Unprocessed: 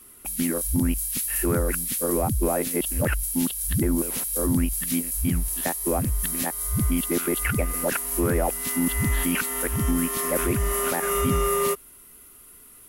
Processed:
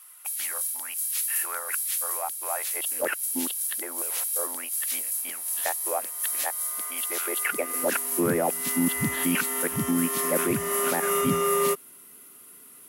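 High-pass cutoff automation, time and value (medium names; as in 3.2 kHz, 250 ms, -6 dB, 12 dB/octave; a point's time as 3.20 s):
high-pass 24 dB/octave
2.68 s 790 Hz
3.26 s 240 Hz
3.73 s 550 Hz
7.17 s 550 Hz
8.29 s 140 Hz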